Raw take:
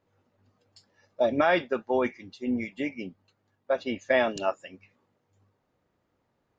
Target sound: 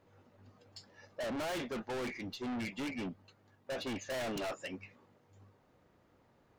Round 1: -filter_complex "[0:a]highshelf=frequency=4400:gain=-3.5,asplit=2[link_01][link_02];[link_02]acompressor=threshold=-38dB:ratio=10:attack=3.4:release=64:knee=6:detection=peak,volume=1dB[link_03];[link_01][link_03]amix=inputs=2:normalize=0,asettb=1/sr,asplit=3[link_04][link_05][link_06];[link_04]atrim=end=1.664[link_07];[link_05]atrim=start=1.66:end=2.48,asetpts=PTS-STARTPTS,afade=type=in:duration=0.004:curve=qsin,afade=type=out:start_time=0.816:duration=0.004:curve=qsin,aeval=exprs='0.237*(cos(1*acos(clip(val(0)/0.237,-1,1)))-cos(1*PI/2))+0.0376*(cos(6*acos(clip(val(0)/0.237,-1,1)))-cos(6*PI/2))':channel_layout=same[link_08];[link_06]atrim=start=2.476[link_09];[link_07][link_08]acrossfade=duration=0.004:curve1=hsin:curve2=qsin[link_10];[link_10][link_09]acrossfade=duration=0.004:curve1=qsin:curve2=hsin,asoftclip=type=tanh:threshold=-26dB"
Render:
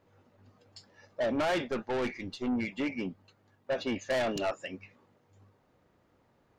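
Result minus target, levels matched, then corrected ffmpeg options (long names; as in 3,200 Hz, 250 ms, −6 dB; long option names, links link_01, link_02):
downward compressor: peak gain reduction +9 dB; soft clipping: distortion −5 dB
-filter_complex "[0:a]highshelf=frequency=4400:gain=-3.5,asplit=2[link_01][link_02];[link_02]acompressor=threshold=-28dB:ratio=10:attack=3.4:release=64:knee=6:detection=peak,volume=1dB[link_03];[link_01][link_03]amix=inputs=2:normalize=0,asettb=1/sr,asplit=3[link_04][link_05][link_06];[link_04]atrim=end=1.664[link_07];[link_05]atrim=start=1.66:end=2.48,asetpts=PTS-STARTPTS,afade=type=in:duration=0.004:curve=qsin,afade=type=out:start_time=0.816:duration=0.004:curve=qsin,aeval=exprs='0.237*(cos(1*acos(clip(val(0)/0.237,-1,1)))-cos(1*PI/2))+0.0376*(cos(6*acos(clip(val(0)/0.237,-1,1)))-cos(6*PI/2))':channel_layout=same[link_08];[link_06]atrim=start=2.476[link_09];[link_07][link_08]acrossfade=duration=0.004:curve1=hsin:curve2=qsin[link_10];[link_10][link_09]acrossfade=duration=0.004:curve1=qsin:curve2=hsin,asoftclip=type=tanh:threshold=-36dB"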